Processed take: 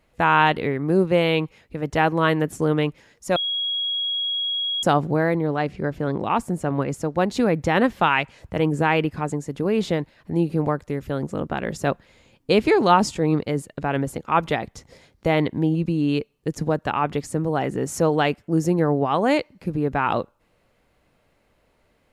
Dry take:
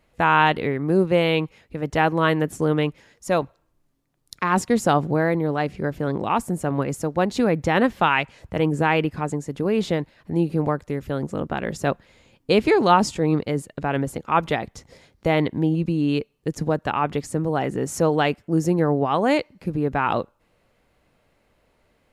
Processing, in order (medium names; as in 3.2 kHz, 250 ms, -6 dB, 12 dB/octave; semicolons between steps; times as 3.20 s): 3.36–4.83 s: bleep 3.31 kHz -22 dBFS; 5.35–7.15 s: treble shelf 9.9 kHz -10 dB